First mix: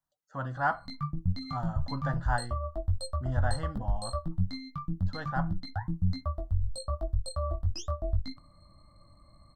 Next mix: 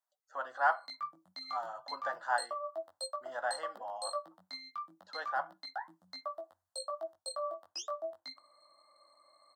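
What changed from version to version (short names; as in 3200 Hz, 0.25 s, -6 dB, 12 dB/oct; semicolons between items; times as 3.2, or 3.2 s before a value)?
master: add HPF 500 Hz 24 dB/oct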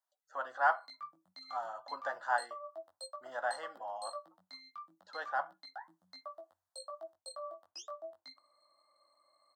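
background -6.5 dB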